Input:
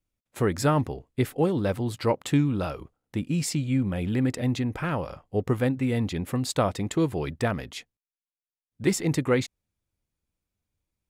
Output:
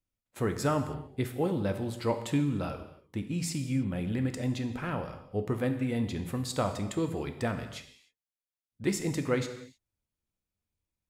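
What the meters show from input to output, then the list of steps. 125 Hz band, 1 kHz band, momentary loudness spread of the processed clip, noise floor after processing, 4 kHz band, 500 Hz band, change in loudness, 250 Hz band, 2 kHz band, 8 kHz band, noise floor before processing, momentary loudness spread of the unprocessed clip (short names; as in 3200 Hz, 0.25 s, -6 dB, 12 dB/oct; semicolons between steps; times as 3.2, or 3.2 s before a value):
-5.5 dB, -5.0 dB, 8 LU, under -85 dBFS, -5.0 dB, -5.0 dB, -5.5 dB, -5.0 dB, -5.0 dB, -5.0 dB, under -85 dBFS, 8 LU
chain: non-linear reverb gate 0.33 s falling, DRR 6.5 dB; gain -6 dB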